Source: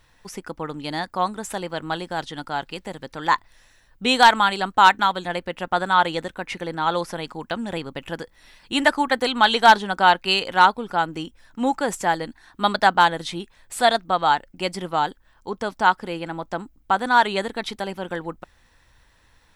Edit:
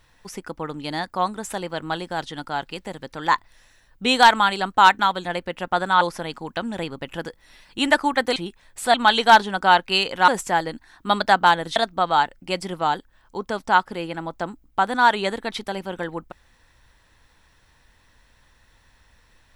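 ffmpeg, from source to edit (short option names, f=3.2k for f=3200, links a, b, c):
-filter_complex "[0:a]asplit=6[a][b][c][d][e][f];[a]atrim=end=6.012[g];[b]atrim=start=6.948:end=9.302[h];[c]atrim=start=13.298:end=13.882[i];[d]atrim=start=9.298:end=10.642[j];[e]atrim=start=11.818:end=13.302[k];[f]atrim=start=13.878[l];[g][h]acrossfade=d=0.004:c1=hsin:c2=hsin[m];[m][i]acrossfade=d=0.004:c1=hsin:c2=hsin[n];[n][j]acrossfade=d=0.004:c1=hsin:c2=hsin[o];[o][k]acrossfade=d=0.004:c1=hsin:c2=hsin[p];[p][l]acrossfade=d=0.004:c1=hsin:c2=hsin"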